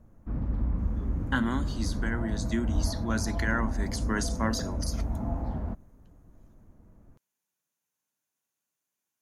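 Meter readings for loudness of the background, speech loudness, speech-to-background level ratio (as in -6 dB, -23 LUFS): -33.0 LUFS, -32.5 LUFS, 0.5 dB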